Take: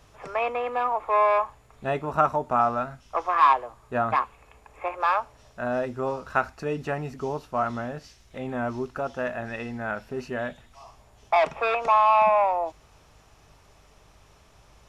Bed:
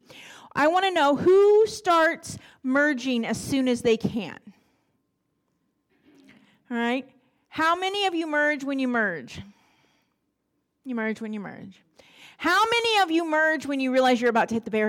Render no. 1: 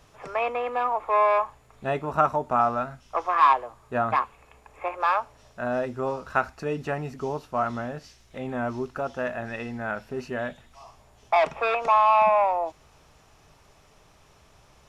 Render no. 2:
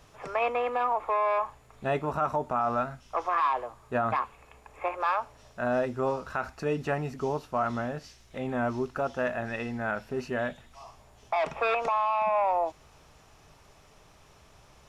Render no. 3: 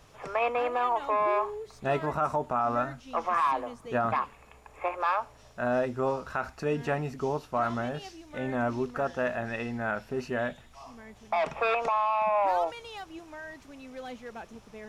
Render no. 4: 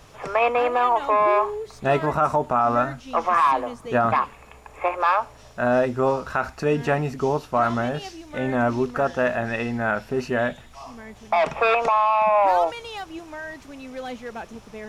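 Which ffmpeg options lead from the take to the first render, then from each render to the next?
ffmpeg -i in.wav -af "bandreject=frequency=50:width_type=h:width=4,bandreject=frequency=100:width_type=h:width=4" out.wav
ffmpeg -i in.wav -af "alimiter=limit=-18dB:level=0:latency=1:release=48" out.wav
ffmpeg -i in.wav -i bed.wav -filter_complex "[1:a]volume=-21dB[link_01];[0:a][link_01]amix=inputs=2:normalize=0" out.wav
ffmpeg -i in.wav -af "volume=7.5dB" out.wav

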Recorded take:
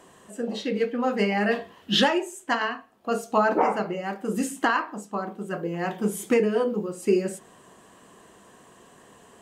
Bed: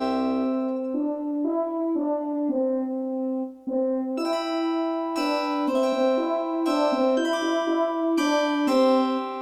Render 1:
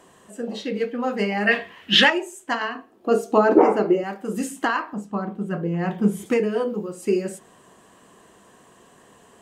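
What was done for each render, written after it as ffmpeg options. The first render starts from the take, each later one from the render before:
ffmpeg -i in.wav -filter_complex "[0:a]asettb=1/sr,asplit=3[link_01][link_02][link_03];[link_01]atrim=end=1.474[link_04];[link_02]atrim=start=1.47:end=2.1,asetpts=PTS-STARTPTS,afade=type=in:duration=0.004:curve=qsin,afade=type=out:start_time=0.626:duration=0.004:curve=qsin,equalizer=frequency=2200:width=1.2:gain=14[link_05];[link_03]atrim=start=2.096[link_06];[link_04][link_05]acrossfade=duration=0.004:curve1=hsin:curve2=qsin[link_07];[link_07][link_06]acrossfade=duration=0.004:curve1=qsin:curve2=hsin,asettb=1/sr,asplit=3[link_08][link_09][link_10];[link_08]atrim=end=2.754[link_11];[link_09]atrim=start=2.75:end=4.04,asetpts=PTS-STARTPTS,afade=type=in:duration=0.004:curve=qsin,afade=type=out:start_time=1.286:duration=0.004:curve=qsin,equalizer=frequency=350:width=1.5:gain=15[link_12];[link_10]atrim=start=4.036[link_13];[link_11][link_12]acrossfade=duration=0.004:curve1=hsin:curve2=qsin[link_14];[link_14][link_13]acrossfade=duration=0.004:curve1=qsin:curve2=hsin,asettb=1/sr,asplit=3[link_15][link_16][link_17];[link_15]atrim=end=4.934[link_18];[link_16]atrim=start=4.93:end=6.26,asetpts=PTS-STARTPTS,afade=type=in:duration=0.004:curve=qsin,afade=type=out:start_time=1.326:duration=0.004:curve=qsin,bass=frequency=250:gain=11,treble=frequency=4000:gain=-7[link_19];[link_17]atrim=start=6.256[link_20];[link_18][link_19]acrossfade=duration=0.004:curve1=hsin:curve2=qsin[link_21];[link_21][link_20]acrossfade=duration=0.004:curve1=qsin:curve2=hsin" out.wav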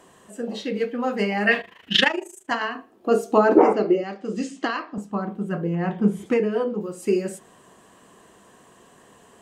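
ffmpeg -i in.wav -filter_complex "[0:a]asettb=1/sr,asplit=3[link_01][link_02][link_03];[link_01]atrim=end=1.614[link_04];[link_02]atrim=start=1.61:end=2.51,asetpts=PTS-STARTPTS,afade=type=in:duration=0.004:curve=qsin,afade=type=out:start_time=0.896:duration=0.004:curve=qsin,tremolo=f=26:d=0.857[link_05];[link_03]atrim=start=2.506[link_06];[link_04][link_05]acrossfade=duration=0.004:curve1=hsin:curve2=qsin[link_07];[link_07][link_06]acrossfade=duration=0.004:curve1=qsin:curve2=hsin,asettb=1/sr,asplit=3[link_08][link_09][link_10];[link_08]atrim=end=3.734[link_11];[link_09]atrim=start=3.73:end=4.98,asetpts=PTS-STARTPTS,afade=type=in:duration=0.004:curve=qsin,afade=type=out:start_time=1.246:duration=0.004:curve=qsin,highpass=160,equalizer=frequency=910:width_type=q:width=4:gain=-9,equalizer=frequency=1500:width_type=q:width=4:gain=-6,equalizer=frequency=4600:width_type=q:width=4:gain=4,lowpass=frequency=6300:width=0.5412,lowpass=frequency=6300:width=1.3066[link_12];[link_10]atrim=start=4.976[link_13];[link_11][link_12]acrossfade=duration=0.004:curve1=hsin:curve2=qsin[link_14];[link_14][link_13]acrossfade=duration=0.004:curve1=qsin:curve2=hsin,asettb=1/sr,asplit=3[link_15][link_16][link_17];[link_15]atrim=end=5.754[link_18];[link_16]atrim=start=5.75:end=6.81,asetpts=PTS-STARTPTS,afade=type=in:duration=0.004:curve=qsin,afade=type=out:start_time=1.056:duration=0.004:curve=qsin,aemphasis=mode=reproduction:type=50kf[link_19];[link_17]atrim=start=6.806[link_20];[link_18][link_19]acrossfade=duration=0.004:curve1=hsin:curve2=qsin[link_21];[link_21][link_20]acrossfade=duration=0.004:curve1=qsin:curve2=hsin" out.wav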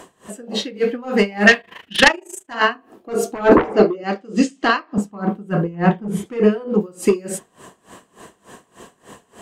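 ffmpeg -i in.wav -af "aeval=exprs='0.794*sin(PI/2*2.82*val(0)/0.794)':channel_layout=same,aeval=exprs='val(0)*pow(10,-23*(0.5-0.5*cos(2*PI*3.4*n/s))/20)':channel_layout=same" out.wav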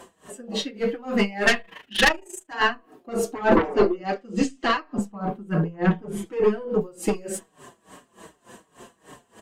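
ffmpeg -i in.wav -filter_complex "[0:a]aeval=exprs='(tanh(2*val(0)+0.4)-tanh(0.4))/2':channel_layout=same,asplit=2[link_01][link_02];[link_02]adelay=5.3,afreqshift=-2.6[link_03];[link_01][link_03]amix=inputs=2:normalize=1" out.wav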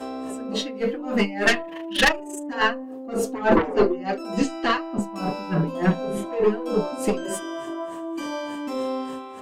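ffmpeg -i in.wav -i bed.wav -filter_complex "[1:a]volume=-8dB[link_01];[0:a][link_01]amix=inputs=2:normalize=0" out.wav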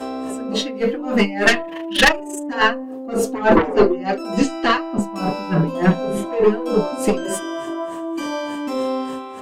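ffmpeg -i in.wav -af "volume=5dB,alimiter=limit=-1dB:level=0:latency=1" out.wav

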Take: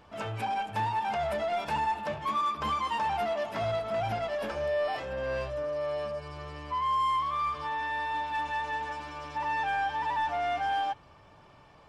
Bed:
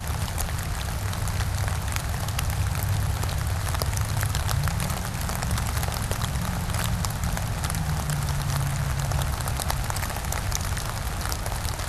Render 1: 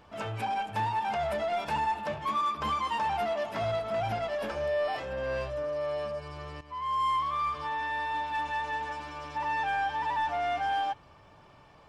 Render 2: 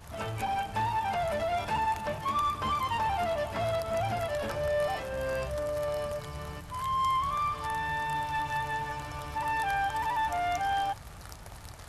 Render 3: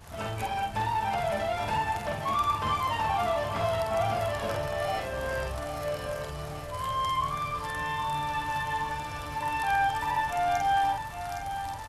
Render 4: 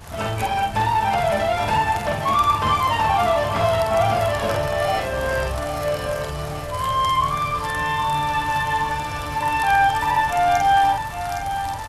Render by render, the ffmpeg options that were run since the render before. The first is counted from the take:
ffmpeg -i in.wav -filter_complex "[0:a]asplit=2[link_01][link_02];[link_01]atrim=end=6.61,asetpts=PTS-STARTPTS,afade=type=out:start_time=6.606:duration=0.004:curve=hsin:silence=0.211349[link_03];[link_02]atrim=start=6.61,asetpts=PTS-STARTPTS,afade=type=in:duration=0.46:silence=0.211349[link_04];[link_03][link_04]concat=n=2:v=0:a=1" out.wav
ffmpeg -i in.wav -i bed.wav -filter_complex "[1:a]volume=-17.5dB[link_01];[0:a][link_01]amix=inputs=2:normalize=0" out.wav
ffmpeg -i in.wav -filter_complex "[0:a]asplit=2[link_01][link_02];[link_02]adelay=48,volume=-3dB[link_03];[link_01][link_03]amix=inputs=2:normalize=0,aecho=1:1:813|1626|2439|3252|4065|4878:0.316|0.174|0.0957|0.0526|0.0289|0.0159" out.wav
ffmpeg -i in.wav -af "volume=9dB" out.wav

